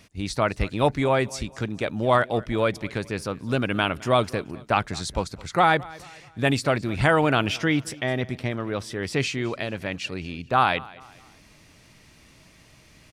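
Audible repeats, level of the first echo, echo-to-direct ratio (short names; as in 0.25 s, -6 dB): 2, -21.5 dB, -20.5 dB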